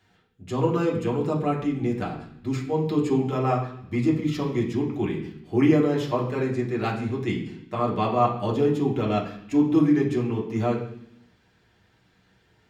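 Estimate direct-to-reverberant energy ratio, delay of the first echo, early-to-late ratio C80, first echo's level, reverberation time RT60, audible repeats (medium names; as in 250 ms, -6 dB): -3.5 dB, no echo, 10.5 dB, no echo, 0.70 s, no echo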